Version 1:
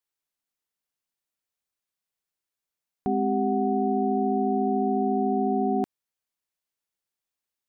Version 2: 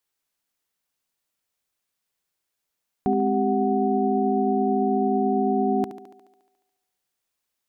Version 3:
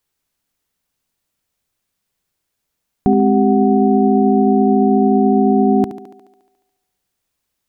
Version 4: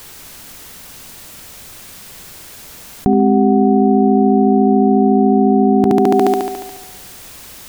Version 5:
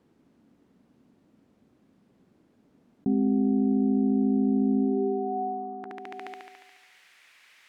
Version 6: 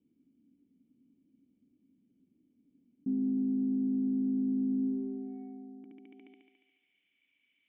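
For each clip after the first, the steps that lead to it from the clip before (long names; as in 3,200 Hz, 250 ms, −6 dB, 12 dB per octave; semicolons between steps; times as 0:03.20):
in parallel at +1 dB: brickwall limiter −24 dBFS, peak gain reduction 8.5 dB; on the sum: feedback echo with a high-pass in the loop 71 ms, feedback 69%, high-pass 170 Hz, level −11 dB
low-shelf EQ 250 Hz +10.5 dB; level +5 dB
envelope flattener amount 100%; level −1 dB
band-pass filter sweep 250 Hz → 2,100 Hz, 0:04.78–0:06.03; level −9 dB
soft clipping −20.5 dBFS, distortion −16 dB; formant resonators in series i; level −2 dB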